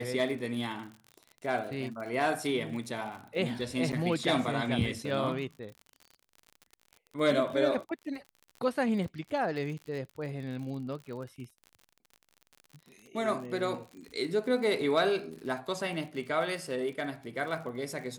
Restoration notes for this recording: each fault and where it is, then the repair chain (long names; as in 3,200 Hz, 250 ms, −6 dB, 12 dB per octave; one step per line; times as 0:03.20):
surface crackle 52 per second −40 dBFS
0:03.92–0:03.93: drop-out 8.2 ms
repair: click removal
repair the gap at 0:03.92, 8.2 ms